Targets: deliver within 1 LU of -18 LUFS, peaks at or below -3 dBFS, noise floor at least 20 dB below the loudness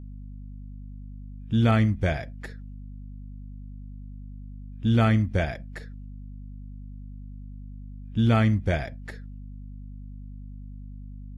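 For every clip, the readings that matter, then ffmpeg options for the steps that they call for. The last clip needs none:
hum 50 Hz; harmonics up to 250 Hz; hum level -38 dBFS; loudness -24.5 LUFS; peak -10.0 dBFS; loudness target -18.0 LUFS
-> -af "bandreject=f=50:t=h:w=6,bandreject=f=100:t=h:w=6,bandreject=f=150:t=h:w=6,bandreject=f=200:t=h:w=6,bandreject=f=250:t=h:w=6"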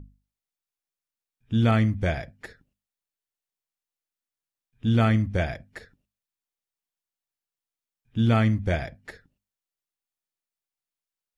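hum none; loudness -24.5 LUFS; peak -10.5 dBFS; loudness target -18.0 LUFS
-> -af "volume=6.5dB"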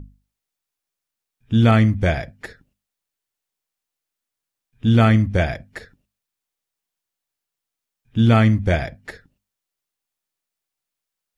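loudness -18.0 LUFS; peak -4.0 dBFS; noise floor -85 dBFS

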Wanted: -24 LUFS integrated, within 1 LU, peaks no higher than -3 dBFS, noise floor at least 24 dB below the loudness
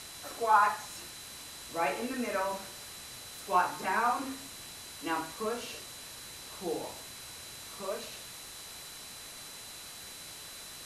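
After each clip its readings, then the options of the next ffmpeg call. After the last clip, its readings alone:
steady tone 4000 Hz; tone level -51 dBFS; noise floor -47 dBFS; noise floor target -59 dBFS; loudness -35.0 LUFS; peak -11.5 dBFS; loudness target -24.0 LUFS
-> -af "bandreject=f=4k:w=30"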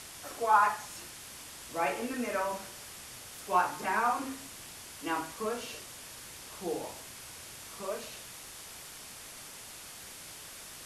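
steady tone none; noise floor -48 dBFS; noise floor target -59 dBFS
-> -af "afftdn=nr=11:nf=-48"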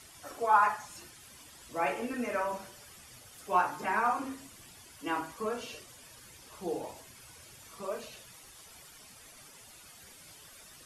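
noise floor -54 dBFS; noise floor target -57 dBFS
-> -af "afftdn=nr=6:nf=-54"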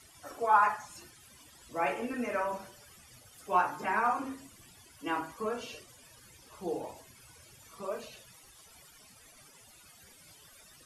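noise floor -58 dBFS; loudness -32.5 LUFS; peak -12.0 dBFS; loudness target -24.0 LUFS
-> -af "volume=8.5dB"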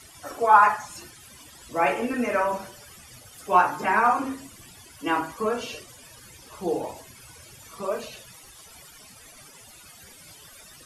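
loudness -24.0 LUFS; peak -3.5 dBFS; noise floor -49 dBFS

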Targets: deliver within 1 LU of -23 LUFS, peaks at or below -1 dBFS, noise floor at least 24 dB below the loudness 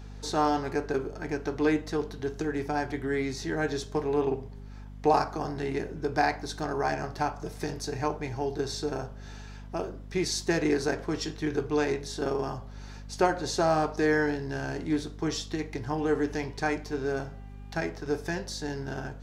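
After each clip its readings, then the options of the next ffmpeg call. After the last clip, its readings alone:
hum 50 Hz; harmonics up to 250 Hz; hum level -40 dBFS; loudness -30.0 LUFS; peak -10.5 dBFS; loudness target -23.0 LUFS
-> -af "bandreject=f=50:t=h:w=6,bandreject=f=100:t=h:w=6,bandreject=f=150:t=h:w=6,bandreject=f=200:t=h:w=6,bandreject=f=250:t=h:w=6"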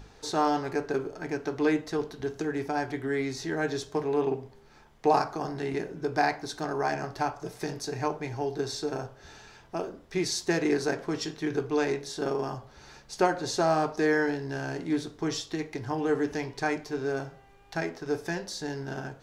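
hum none; loudness -30.5 LUFS; peak -10.0 dBFS; loudness target -23.0 LUFS
-> -af "volume=7.5dB"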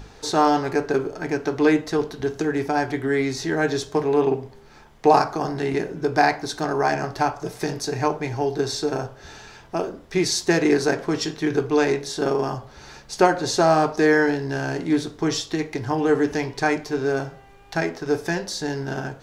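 loudness -23.0 LUFS; peak -2.5 dBFS; noise floor -48 dBFS

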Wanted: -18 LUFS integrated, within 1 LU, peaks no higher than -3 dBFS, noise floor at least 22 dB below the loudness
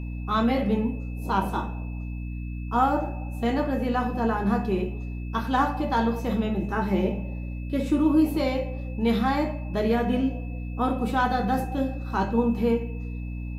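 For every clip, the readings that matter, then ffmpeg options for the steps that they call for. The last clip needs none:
hum 60 Hz; harmonics up to 300 Hz; hum level -30 dBFS; steady tone 2600 Hz; tone level -49 dBFS; loudness -26.5 LUFS; peak -10.0 dBFS; loudness target -18.0 LUFS
-> -af "bandreject=f=60:t=h:w=6,bandreject=f=120:t=h:w=6,bandreject=f=180:t=h:w=6,bandreject=f=240:t=h:w=6,bandreject=f=300:t=h:w=6"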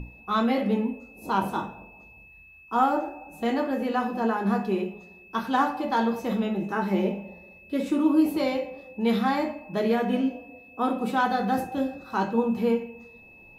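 hum none; steady tone 2600 Hz; tone level -49 dBFS
-> -af "bandreject=f=2.6k:w=30"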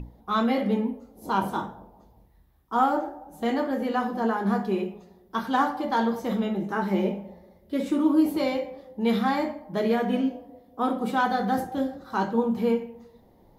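steady tone none; loudness -26.5 LUFS; peak -10.5 dBFS; loudness target -18.0 LUFS
-> -af "volume=8.5dB,alimiter=limit=-3dB:level=0:latency=1"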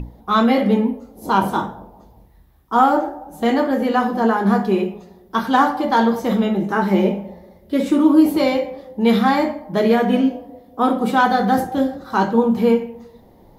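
loudness -18.0 LUFS; peak -3.0 dBFS; noise floor -49 dBFS

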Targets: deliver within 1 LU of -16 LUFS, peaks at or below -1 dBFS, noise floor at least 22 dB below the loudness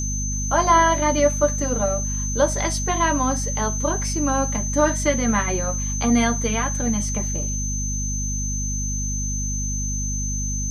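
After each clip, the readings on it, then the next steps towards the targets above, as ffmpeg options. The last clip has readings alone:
hum 50 Hz; harmonics up to 250 Hz; hum level -24 dBFS; steady tone 6200 Hz; tone level -27 dBFS; loudness -22.0 LUFS; peak -3.5 dBFS; loudness target -16.0 LUFS
-> -af "bandreject=f=50:t=h:w=6,bandreject=f=100:t=h:w=6,bandreject=f=150:t=h:w=6,bandreject=f=200:t=h:w=6,bandreject=f=250:t=h:w=6"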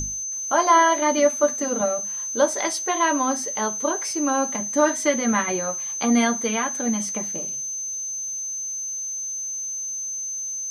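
hum none; steady tone 6200 Hz; tone level -27 dBFS
-> -af "bandreject=f=6.2k:w=30"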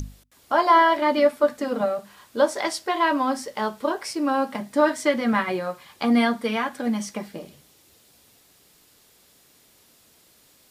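steady tone none; loudness -23.0 LUFS; peak -5.0 dBFS; loudness target -16.0 LUFS
-> -af "volume=7dB,alimiter=limit=-1dB:level=0:latency=1"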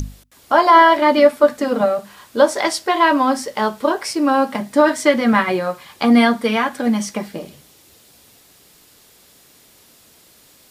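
loudness -16.0 LUFS; peak -1.0 dBFS; noise floor -51 dBFS

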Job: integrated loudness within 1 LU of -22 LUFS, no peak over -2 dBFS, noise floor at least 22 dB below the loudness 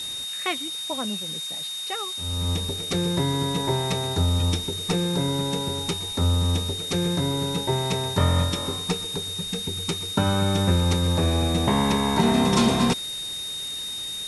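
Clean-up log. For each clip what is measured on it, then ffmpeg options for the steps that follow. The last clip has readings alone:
steady tone 3700 Hz; tone level -30 dBFS; noise floor -32 dBFS; noise floor target -46 dBFS; loudness -24.0 LUFS; peak -8.0 dBFS; loudness target -22.0 LUFS
-> -af "bandreject=f=3.7k:w=30"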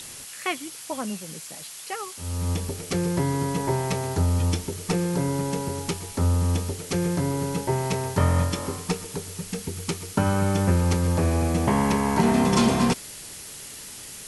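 steady tone none; noise floor -40 dBFS; noise floor target -47 dBFS
-> -af "afftdn=nr=7:nf=-40"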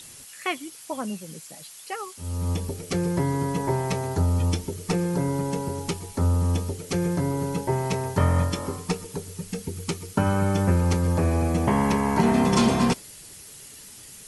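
noise floor -45 dBFS; noise floor target -48 dBFS
-> -af "afftdn=nr=6:nf=-45"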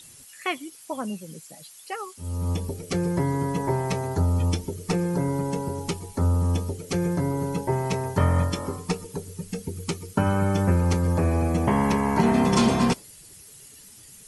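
noise floor -48 dBFS; loudness -25.5 LUFS; peak -8.5 dBFS; loudness target -22.0 LUFS
-> -af "volume=3.5dB"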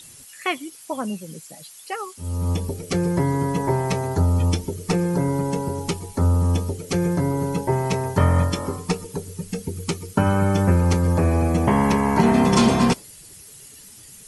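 loudness -22.0 LUFS; peak -5.0 dBFS; noise floor -45 dBFS

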